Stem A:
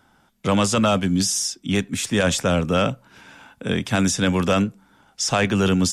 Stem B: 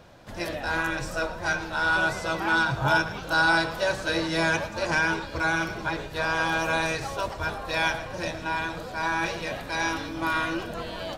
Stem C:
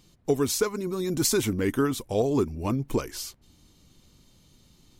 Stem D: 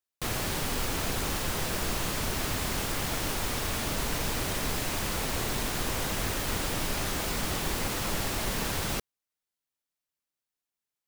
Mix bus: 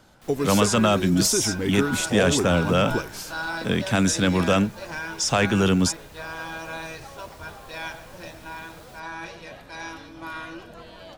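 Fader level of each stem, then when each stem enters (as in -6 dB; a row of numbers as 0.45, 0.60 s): -1.0, -9.0, -1.0, -19.0 dB; 0.00, 0.00, 0.00, 0.00 s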